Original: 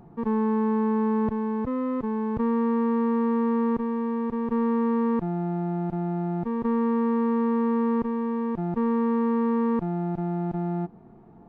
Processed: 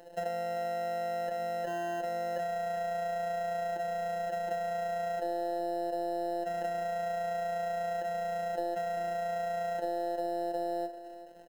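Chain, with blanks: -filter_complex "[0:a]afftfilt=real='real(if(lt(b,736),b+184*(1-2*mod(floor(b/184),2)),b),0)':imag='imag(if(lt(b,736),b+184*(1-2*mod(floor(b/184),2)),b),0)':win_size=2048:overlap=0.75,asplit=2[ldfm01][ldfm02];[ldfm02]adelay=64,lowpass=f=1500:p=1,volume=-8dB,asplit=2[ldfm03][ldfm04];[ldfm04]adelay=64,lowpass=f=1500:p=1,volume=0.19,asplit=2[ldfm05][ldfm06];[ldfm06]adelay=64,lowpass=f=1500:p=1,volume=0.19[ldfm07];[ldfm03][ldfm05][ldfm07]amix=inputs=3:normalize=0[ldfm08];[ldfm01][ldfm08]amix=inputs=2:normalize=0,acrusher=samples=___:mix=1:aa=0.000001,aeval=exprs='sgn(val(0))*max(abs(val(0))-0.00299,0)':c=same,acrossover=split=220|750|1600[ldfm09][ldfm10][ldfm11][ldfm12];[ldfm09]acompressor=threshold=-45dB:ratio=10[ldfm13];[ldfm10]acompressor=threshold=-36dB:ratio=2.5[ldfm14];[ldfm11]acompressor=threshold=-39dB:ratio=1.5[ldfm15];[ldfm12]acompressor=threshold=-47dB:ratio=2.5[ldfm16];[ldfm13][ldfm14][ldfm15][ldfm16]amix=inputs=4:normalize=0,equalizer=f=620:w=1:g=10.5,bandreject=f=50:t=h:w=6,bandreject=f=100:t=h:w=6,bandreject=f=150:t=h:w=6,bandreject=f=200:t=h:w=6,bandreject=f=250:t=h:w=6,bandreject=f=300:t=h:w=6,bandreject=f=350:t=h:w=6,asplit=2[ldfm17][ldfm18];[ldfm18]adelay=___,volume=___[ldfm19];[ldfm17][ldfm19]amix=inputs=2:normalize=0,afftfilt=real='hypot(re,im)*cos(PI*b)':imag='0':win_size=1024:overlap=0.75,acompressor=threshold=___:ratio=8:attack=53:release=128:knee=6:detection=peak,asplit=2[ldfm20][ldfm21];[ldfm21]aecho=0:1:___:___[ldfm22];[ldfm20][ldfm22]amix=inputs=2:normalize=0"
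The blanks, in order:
38, 15, -9.5dB, -35dB, 392, 0.211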